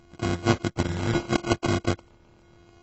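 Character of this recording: a buzz of ramps at a fixed pitch in blocks of 128 samples; phasing stages 2, 0.78 Hz, lowest notch 710–3600 Hz; aliases and images of a low sample rate 1.8 kHz, jitter 0%; AAC

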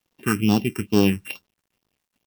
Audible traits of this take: a buzz of ramps at a fixed pitch in blocks of 16 samples; phasing stages 4, 2.3 Hz, lowest notch 610–2000 Hz; a quantiser's noise floor 12-bit, dither none

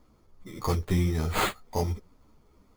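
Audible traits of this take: aliases and images of a low sample rate 5.6 kHz, jitter 0%; a shimmering, thickened sound

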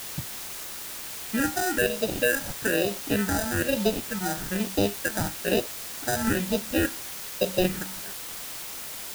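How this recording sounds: aliases and images of a low sample rate 1.1 kHz, jitter 0%; phasing stages 4, 1.1 Hz, lowest notch 430–1700 Hz; a quantiser's noise floor 6-bit, dither triangular

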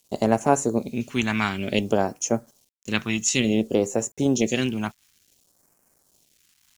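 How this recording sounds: a quantiser's noise floor 10-bit, dither none; phasing stages 2, 0.56 Hz, lowest notch 490–3400 Hz

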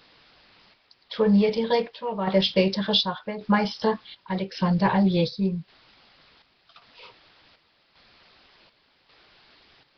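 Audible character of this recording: a quantiser's noise floor 8-bit, dither triangular; chopped level 0.88 Hz, depth 60%, duty 65%; Nellymoser

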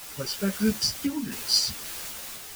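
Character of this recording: a quantiser's noise floor 6-bit, dither triangular; random-step tremolo 3.8 Hz; a shimmering, thickened sound

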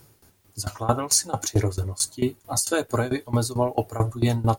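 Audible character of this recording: tremolo saw down 4.5 Hz, depth 90%; a quantiser's noise floor 12-bit, dither triangular

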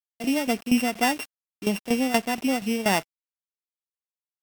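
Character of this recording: a buzz of ramps at a fixed pitch in blocks of 16 samples; tremolo saw down 4.2 Hz, depth 80%; a quantiser's noise floor 8-bit, dither none; MP3

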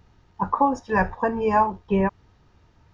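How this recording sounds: noise floor -59 dBFS; spectral tilt -2.5 dB/octave

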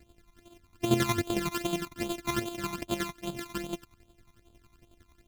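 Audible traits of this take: a buzz of ramps at a fixed pitch in blocks of 128 samples; phasing stages 12, 2.5 Hz, lowest notch 500–1900 Hz; chopped level 11 Hz, depth 60%, duty 35%

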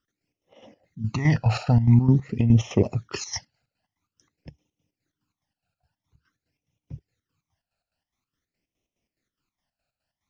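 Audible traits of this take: chopped level 4.8 Hz, depth 65%, duty 55%; phasing stages 12, 0.48 Hz, lowest notch 340–1500 Hz

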